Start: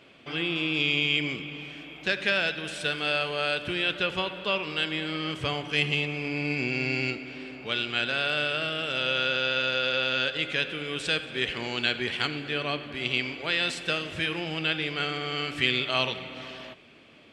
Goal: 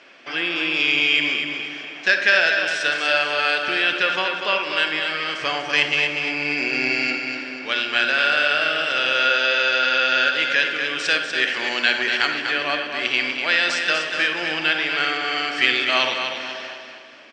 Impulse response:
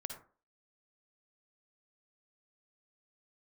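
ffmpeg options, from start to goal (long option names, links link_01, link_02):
-filter_complex "[0:a]highpass=390,equalizer=frequency=440:width_type=q:width=4:gain=-5,equalizer=frequency=1700:width_type=q:width=4:gain=7,equalizer=frequency=3500:width_type=q:width=4:gain=-4,equalizer=frequency=5500:width_type=q:width=4:gain=8,lowpass=frequency=7400:width=0.5412,lowpass=frequency=7400:width=1.3066,aecho=1:1:244|488|732|976|1220:0.473|0.194|0.0795|0.0326|0.0134,asplit=2[link_01][link_02];[1:a]atrim=start_sample=2205[link_03];[link_02][link_03]afir=irnorm=-1:irlink=0,volume=6dB[link_04];[link_01][link_04]amix=inputs=2:normalize=0,volume=-1dB"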